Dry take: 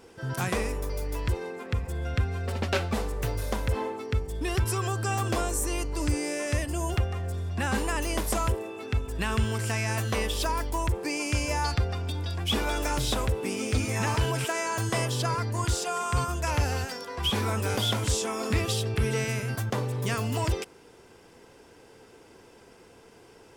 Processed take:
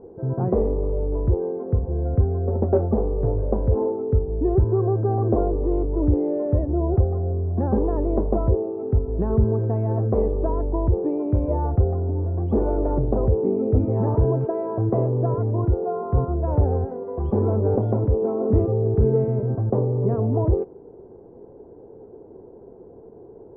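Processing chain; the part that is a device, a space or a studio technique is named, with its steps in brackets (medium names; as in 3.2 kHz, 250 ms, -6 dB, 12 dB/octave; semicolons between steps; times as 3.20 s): under water (low-pass 720 Hz 24 dB/octave; peaking EQ 390 Hz +6 dB 0.42 oct); trim +7.5 dB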